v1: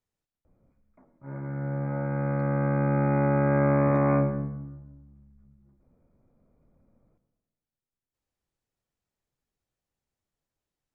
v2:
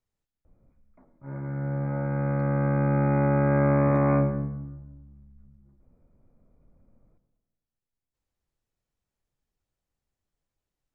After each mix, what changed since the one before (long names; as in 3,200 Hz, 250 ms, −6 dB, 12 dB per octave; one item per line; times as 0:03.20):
master: add low-shelf EQ 66 Hz +9 dB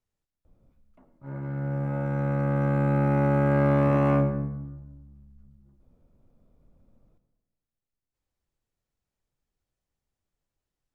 background: remove linear-phase brick-wall low-pass 2,500 Hz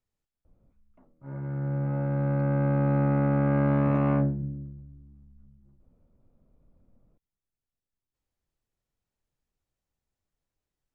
background: add high-frequency loss of the air 290 metres
reverb: off